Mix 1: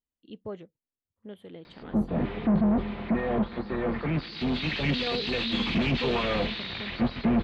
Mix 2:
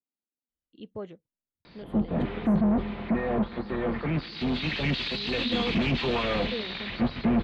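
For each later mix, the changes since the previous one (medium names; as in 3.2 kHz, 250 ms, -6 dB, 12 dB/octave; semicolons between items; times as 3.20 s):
first voice: entry +0.50 s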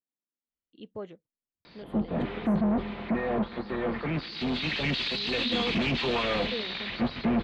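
background: add treble shelf 5.5 kHz +5 dB; master: add bass shelf 180 Hz -6 dB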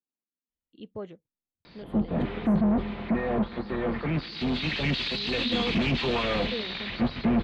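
master: add bass shelf 180 Hz +6 dB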